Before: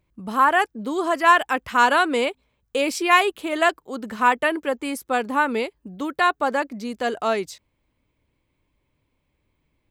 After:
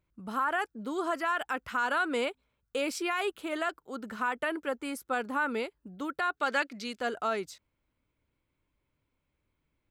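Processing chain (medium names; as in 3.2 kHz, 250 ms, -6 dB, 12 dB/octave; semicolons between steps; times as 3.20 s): peaking EQ 1.4 kHz +9 dB 0.26 oct; peak limiter -12 dBFS, peak gain reduction 12 dB; 6.37–7.00 s: frequency weighting D; trim -8.5 dB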